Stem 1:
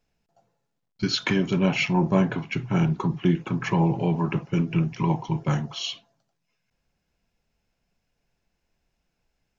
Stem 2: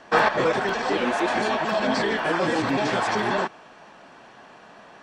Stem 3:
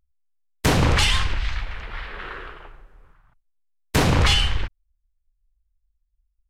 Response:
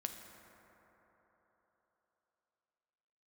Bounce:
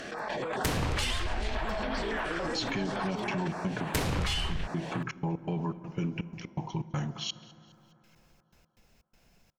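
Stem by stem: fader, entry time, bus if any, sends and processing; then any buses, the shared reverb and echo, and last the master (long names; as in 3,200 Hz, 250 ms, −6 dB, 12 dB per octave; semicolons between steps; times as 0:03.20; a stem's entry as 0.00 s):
−6.0 dB, 1.45 s, bus A, send −9 dB, echo send −20.5 dB, gate pattern "xxx.x.xx." 123 BPM −60 dB
+2.0 dB, 0.00 s, bus A, no send, no echo send, compressor whose output falls as the input rises −32 dBFS, ratio −1; notch on a step sequencer 7.1 Hz 950–7,400 Hz
−3.5 dB, 0.00 s, no bus, no send, no echo send, no processing
bus A: 0.0 dB, upward compression, threshold −48 dBFS; brickwall limiter −24 dBFS, peak gain reduction 10 dB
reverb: on, RT60 4.1 s, pre-delay 5 ms
echo: repeating echo 207 ms, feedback 49%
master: high-shelf EQ 8,900 Hz +6 dB; downward compressor 6 to 1, threshold −27 dBFS, peak gain reduction 10.5 dB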